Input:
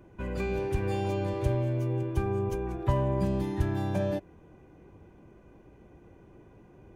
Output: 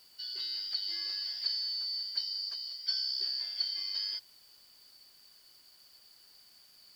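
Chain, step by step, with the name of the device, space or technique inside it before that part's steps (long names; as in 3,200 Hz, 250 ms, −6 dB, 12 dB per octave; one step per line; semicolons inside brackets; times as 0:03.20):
split-band scrambled radio (band-splitting scrambler in four parts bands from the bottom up 4321; band-pass filter 310–3,300 Hz; white noise bed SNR 27 dB)
0:02.23–0:02.95: Chebyshev high-pass filter 440 Hz, order 2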